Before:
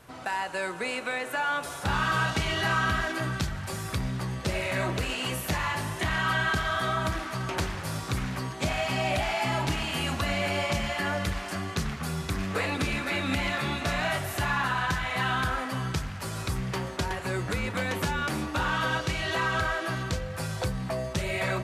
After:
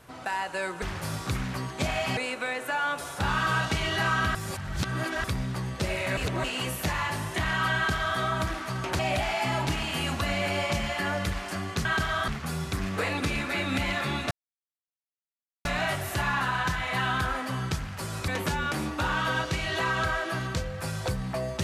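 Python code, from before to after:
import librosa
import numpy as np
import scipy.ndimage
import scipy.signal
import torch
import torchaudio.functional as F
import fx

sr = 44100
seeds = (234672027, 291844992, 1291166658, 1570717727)

y = fx.edit(x, sr, fx.reverse_span(start_s=3.0, length_s=0.89),
    fx.reverse_span(start_s=4.82, length_s=0.27),
    fx.duplicate(start_s=6.41, length_s=0.43, to_s=11.85),
    fx.move(start_s=7.64, length_s=1.35, to_s=0.82),
    fx.insert_silence(at_s=13.88, length_s=1.34),
    fx.cut(start_s=16.51, length_s=1.33), tone=tone)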